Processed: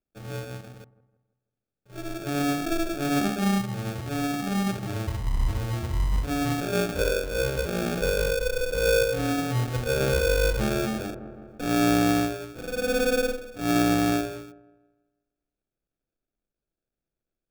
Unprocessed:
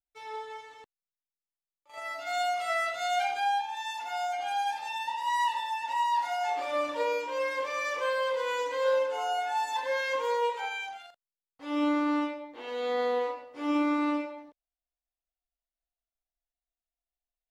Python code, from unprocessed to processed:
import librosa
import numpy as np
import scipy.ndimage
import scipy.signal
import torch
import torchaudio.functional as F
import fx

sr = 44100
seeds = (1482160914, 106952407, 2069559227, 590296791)

y = fx.sample_hold(x, sr, seeds[0], rate_hz=1000.0, jitter_pct=0)
y = fx.echo_wet_lowpass(y, sr, ms=163, feedback_pct=40, hz=1100.0, wet_db=-17.5)
y = fx.env_flatten(y, sr, amount_pct=50, at=(10.0, 12.12))
y = F.gain(torch.from_numpy(y), 4.5).numpy()